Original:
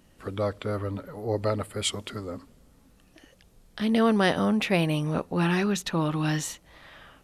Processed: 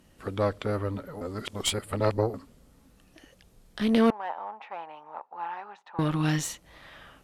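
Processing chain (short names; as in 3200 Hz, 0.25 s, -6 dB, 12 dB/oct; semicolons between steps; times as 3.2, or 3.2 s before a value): added harmonics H 4 -15 dB, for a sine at -8.5 dBFS; 1.21–2.34 reverse; 4.1–5.99 ladder band-pass 920 Hz, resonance 75%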